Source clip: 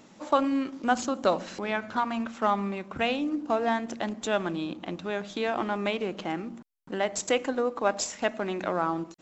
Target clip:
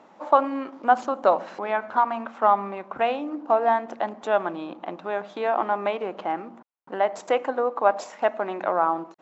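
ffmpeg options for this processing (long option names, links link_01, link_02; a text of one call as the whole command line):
ffmpeg -i in.wav -af "bandpass=frequency=840:width_type=q:width=1.4:csg=0,volume=8.5dB" out.wav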